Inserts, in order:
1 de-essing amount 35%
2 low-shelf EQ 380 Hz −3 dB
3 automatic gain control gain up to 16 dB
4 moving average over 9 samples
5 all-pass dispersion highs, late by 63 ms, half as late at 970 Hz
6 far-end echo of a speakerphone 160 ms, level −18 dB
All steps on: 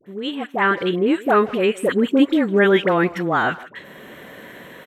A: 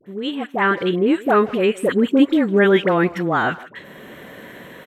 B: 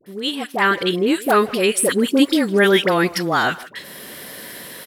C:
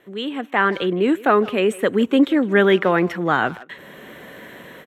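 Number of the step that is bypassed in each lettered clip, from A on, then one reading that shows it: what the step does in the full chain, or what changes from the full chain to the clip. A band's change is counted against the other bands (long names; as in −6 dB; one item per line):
2, 125 Hz band +2.0 dB
4, 4 kHz band +7.5 dB
5, change in crest factor +2.0 dB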